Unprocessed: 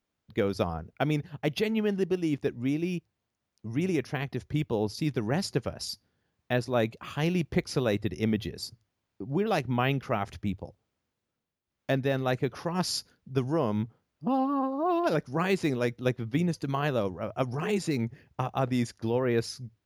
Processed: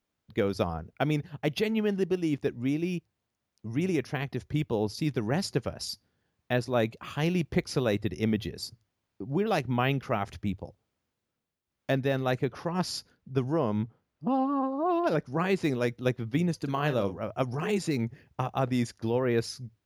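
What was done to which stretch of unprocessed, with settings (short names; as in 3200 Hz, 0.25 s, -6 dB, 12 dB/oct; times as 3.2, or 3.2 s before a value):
12.44–15.64 high shelf 3800 Hz -6 dB
16.61–17.19 doubler 40 ms -10.5 dB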